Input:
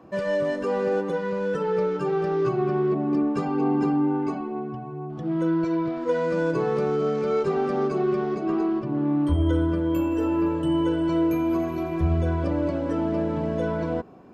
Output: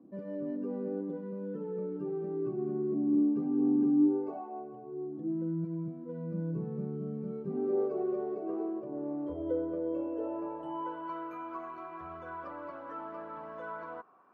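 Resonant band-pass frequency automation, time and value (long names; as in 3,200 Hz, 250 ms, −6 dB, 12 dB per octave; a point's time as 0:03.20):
resonant band-pass, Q 4
0:03.97 260 Hz
0:04.44 740 Hz
0:05.61 180 Hz
0:07.43 180 Hz
0:07.85 510 Hz
0:10.07 510 Hz
0:11.21 1,200 Hz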